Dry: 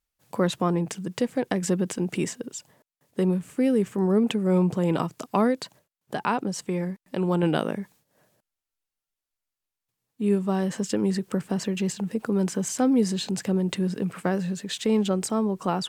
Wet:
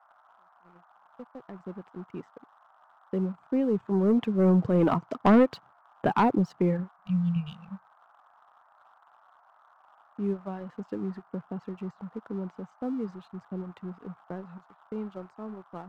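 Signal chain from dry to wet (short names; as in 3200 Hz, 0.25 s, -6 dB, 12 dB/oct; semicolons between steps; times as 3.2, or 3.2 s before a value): opening faded in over 5.14 s; Doppler pass-by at 5.61, 6 m/s, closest 4.4 m; tape spacing loss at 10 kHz 43 dB; gate -56 dBFS, range -22 dB; reverb removal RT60 1.5 s; band noise 670–1400 Hz -66 dBFS; spectral repair 7.01–7.85, 200–2300 Hz; in parallel at -6.5 dB: sine folder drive 5 dB, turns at -14.5 dBFS; on the sum: sample leveller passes 1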